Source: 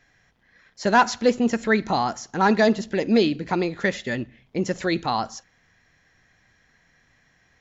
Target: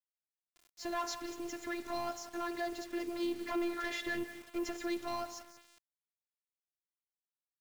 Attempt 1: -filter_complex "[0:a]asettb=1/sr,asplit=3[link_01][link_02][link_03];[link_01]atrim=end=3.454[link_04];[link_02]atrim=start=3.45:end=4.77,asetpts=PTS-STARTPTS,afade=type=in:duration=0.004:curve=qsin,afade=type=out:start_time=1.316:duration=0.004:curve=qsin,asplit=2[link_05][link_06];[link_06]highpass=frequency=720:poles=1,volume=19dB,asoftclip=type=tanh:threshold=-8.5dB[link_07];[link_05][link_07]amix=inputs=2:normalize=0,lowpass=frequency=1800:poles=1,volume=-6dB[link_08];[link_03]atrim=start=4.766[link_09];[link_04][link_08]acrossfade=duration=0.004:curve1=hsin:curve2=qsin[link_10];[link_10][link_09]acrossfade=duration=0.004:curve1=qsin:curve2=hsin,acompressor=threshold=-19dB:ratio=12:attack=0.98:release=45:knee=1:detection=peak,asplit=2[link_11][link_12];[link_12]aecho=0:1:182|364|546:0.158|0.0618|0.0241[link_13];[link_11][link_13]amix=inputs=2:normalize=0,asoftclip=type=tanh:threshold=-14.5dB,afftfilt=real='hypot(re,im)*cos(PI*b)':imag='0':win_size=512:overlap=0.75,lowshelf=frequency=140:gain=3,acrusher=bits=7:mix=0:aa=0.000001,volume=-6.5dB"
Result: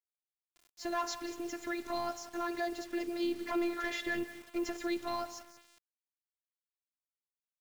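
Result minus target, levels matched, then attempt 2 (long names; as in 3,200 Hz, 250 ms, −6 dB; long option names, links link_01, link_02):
soft clipping: distortion −11 dB
-filter_complex "[0:a]asettb=1/sr,asplit=3[link_01][link_02][link_03];[link_01]atrim=end=3.454[link_04];[link_02]atrim=start=3.45:end=4.77,asetpts=PTS-STARTPTS,afade=type=in:duration=0.004:curve=qsin,afade=type=out:start_time=1.316:duration=0.004:curve=qsin,asplit=2[link_05][link_06];[link_06]highpass=frequency=720:poles=1,volume=19dB,asoftclip=type=tanh:threshold=-8.5dB[link_07];[link_05][link_07]amix=inputs=2:normalize=0,lowpass=frequency=1800:poles=1,volume=-6dB[link_08];[link_03]atrim=start=4.766[link_09];[link_04][link_08]acrossfade=duration=0.004:curve1=hsin:curve2=qsin[link_10];[link_10][link_09]acrossfade=duration=0.004:curve1=qsin:curve2=hsin,acompressor=threshold=-19dB:ratio=12:attack=0.98:release=45:knee=1:detection=peak,asplit=2[link_11][link_12];[link_12]aecho=0:1:182|364|546:0.158|0.0618|0.0241[link_13];[link_11][link_13]amix=inputs=2:normalize=0,asoftclip=type=tanh:threshold=-21.5dB,afftfilt=real='hypot(re,im)*cos(PI*b)':imag='0':win_size=512:overlap=0.75,lowshelf=frequency=140:gain=3,acrusher=bits=7:mix=0:aa=0.000001,volume=-6.5dB"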